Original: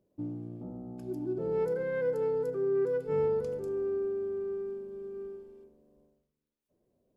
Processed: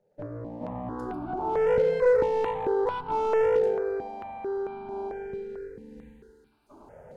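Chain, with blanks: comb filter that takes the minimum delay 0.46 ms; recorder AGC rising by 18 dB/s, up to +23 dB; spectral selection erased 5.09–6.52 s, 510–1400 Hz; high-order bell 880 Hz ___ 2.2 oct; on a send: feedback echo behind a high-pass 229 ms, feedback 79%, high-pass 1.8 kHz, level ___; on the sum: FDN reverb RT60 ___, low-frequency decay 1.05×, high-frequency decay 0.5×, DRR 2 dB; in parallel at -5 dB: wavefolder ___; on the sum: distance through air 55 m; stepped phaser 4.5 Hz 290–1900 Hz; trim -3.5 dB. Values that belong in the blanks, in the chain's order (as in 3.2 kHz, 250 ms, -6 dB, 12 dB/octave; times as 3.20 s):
+9.5 dB, -18 dB, 1.1 s, -18.5 dBFS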